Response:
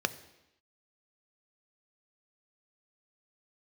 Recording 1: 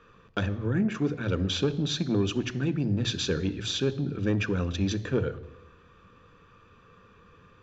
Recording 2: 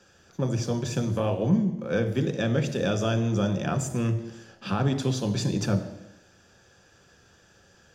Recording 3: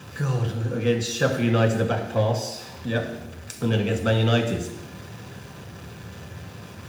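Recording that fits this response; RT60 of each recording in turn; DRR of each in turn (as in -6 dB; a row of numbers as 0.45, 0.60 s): 1; 0.90, 0.90, 0.90 s; 11.5, 5.5, 1.0 dB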